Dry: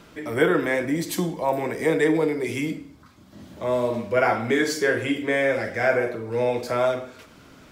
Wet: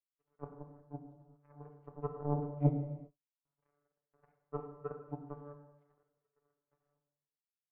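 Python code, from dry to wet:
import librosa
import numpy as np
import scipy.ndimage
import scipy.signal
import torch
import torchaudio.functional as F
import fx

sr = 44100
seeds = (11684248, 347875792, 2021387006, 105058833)

y = fx.env_lowpass_down(x, sr, base_hz=540.0, full_db=-20.5)
y = fx.low_shelf(y, sr, hz=370.0, db=7.5, at=(2.14, 2.69))
y = fx.vocoder(y, sr, bands=32, carrier='saw', carrier_hz=145.0)
y = fx.comb_fb(y, sr, f0_hz=150.0, decay_s=0.2, harmonics='odd', damping=0.0, mix_pct=80)
y = y + 10.0 ** (-61.0 / 20.0) * np.sin(2.0 * np.pi * 980.0 * np.arange(len(y)) / sr)
y = fx.power_curve(y, sr, exponent=3.0)
y = fx.rev_gated(y, sr, seeds[0], gate_ms=420, shape='falling', drr_db=5.5)
y = fx.env_flatten(y, sr, amount_pct=70, at=(3.45, 3.88))
y = y * 10.0 ** (2.0 / 20.0)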